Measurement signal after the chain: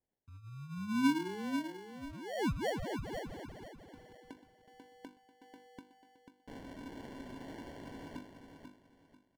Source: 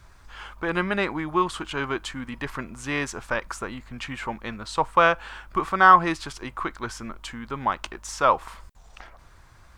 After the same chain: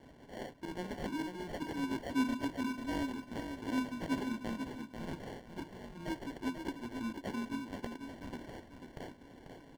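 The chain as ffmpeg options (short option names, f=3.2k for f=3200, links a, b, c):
-filter_complex "[0:a]aexciter=amount=3.7:drive=3.6:freq=4k,highpass=f=120:p=1,equalizer=f=570:t=o:w=0.55:g=-12.5,bandreject=f=50:t=h:w=6,bandreject=f=100:t=h:w=6,bandreject=f=150:t=h:w=6,bandreject=f=200:t=h:w=6,bandreject=f=250:t=h:w=6,bandreject=f=300:t=h:w=6,bandreject=f=350:t=h:w=6,areverse,acompressor=threshold=-42dB:ratio=6,areverse,asplit=3[a][b][c];[a]bandpass=f=270:t=q:w=8,volume=0dB[d];[b]bandpass=f=2.29k:t=q:w=8,volume=-6dB[e];[c]bandpass=f=3.01k:t=q:w=8,volume=-9dB[f];[d][e][f]amix=inputs=3:normalize=0,acrusher=samples=35:mix=1:aa=0.000001,highshelf=f=6.3k:g=-11,aecho=1:1:491|982|1473|1964:0.447|0.13|0.0376|0.0109,volume=17.5dB"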